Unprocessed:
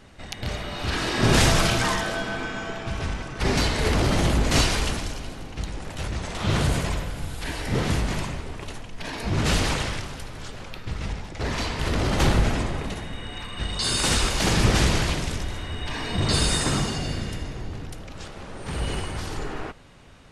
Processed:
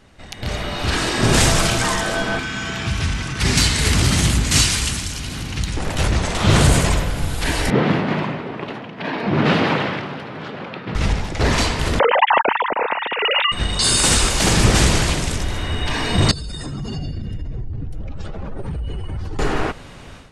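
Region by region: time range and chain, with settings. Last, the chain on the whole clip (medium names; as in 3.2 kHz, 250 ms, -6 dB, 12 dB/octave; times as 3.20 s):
2.39–5.77 s: high-pass 62 Hz + peaking EQ 570 Hz -14 dB 2.2 oct + upward compressor, threshold -29 dBFS
7.70–10.95 s: high-pass 150 Hz 24 dB/octave + distance through air 360 m
11.99–13.52 s: formants replaced by sine waves + small resonant body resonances 220/910 Hz, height 9 dB, ringing for 20 ms
16.31–19.39 s: spectral contrast enhancement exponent 1.8 + compression 10:1, threshold -34 dBFS
whole clip: dynamic bell 8.2 kHz, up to +6 dB, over -45 dBFS, Q 1.6; level rider gain up to 13 dB; trim -1 dB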